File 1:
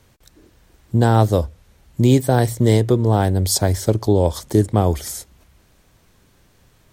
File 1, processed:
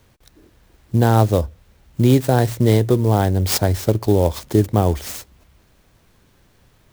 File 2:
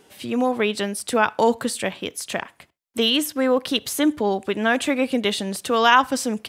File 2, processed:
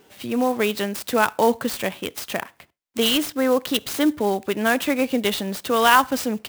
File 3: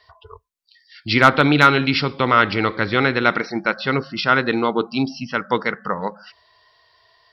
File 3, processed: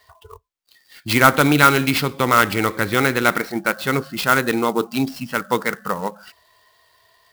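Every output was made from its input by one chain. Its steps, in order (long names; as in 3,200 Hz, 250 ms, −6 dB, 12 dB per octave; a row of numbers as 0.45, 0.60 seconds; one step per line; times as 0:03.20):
converter with an unsteady clock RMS 0.026 ms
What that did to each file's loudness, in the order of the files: 0.0, 0.0, 0.0 LU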